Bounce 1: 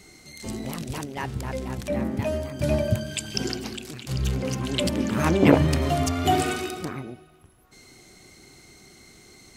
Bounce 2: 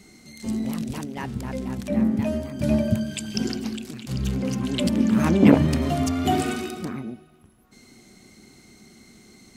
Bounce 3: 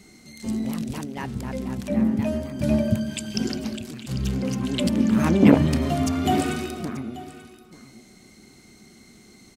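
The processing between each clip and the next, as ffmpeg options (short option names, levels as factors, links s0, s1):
-af "equalizer=f=220:t=o:w=0.56:g=12,volume=0.75"
-af "aecho=1:1:885:0.141"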